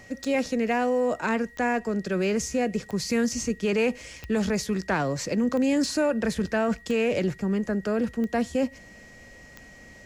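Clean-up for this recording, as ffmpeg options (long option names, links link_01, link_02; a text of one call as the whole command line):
ffmpeg -i in.wav -af "adeclick=threshold=4,bandreject=frequency=1900:width=30" out.wav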